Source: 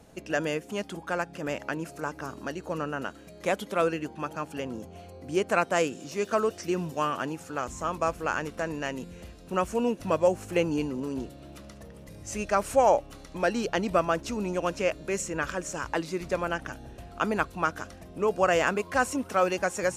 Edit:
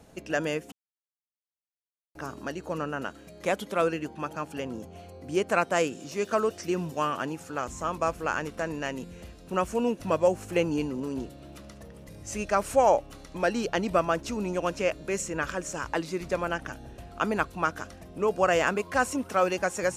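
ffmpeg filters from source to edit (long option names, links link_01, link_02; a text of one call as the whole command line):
ffmpeg -i in.wav -filter_complex "[0:a]asplit=3[link_01][link_02][link_03];[link_01]atrim=end=0.72,asetpts=PTS-STARTPTS,afade=type=out:start_time=0.716:duration=0.004:curve=hsin[link_04];[link_02]atrim=start=0.72:end=2.15,asetpts=PTS-STARTPTS,volume=0[link_05];[link_03]atrim=start=2.15,asetpts=PTS-STARTPTS,afade=type=in:duration=0.004:curve=hsin[link_06];[link_04][link_05][link_06]concat=n=3:v=0:a=1" out.wav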